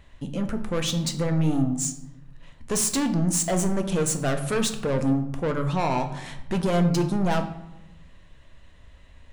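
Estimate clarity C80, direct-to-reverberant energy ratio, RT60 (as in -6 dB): 13.0 dB, 6.0 dB, 0.90 s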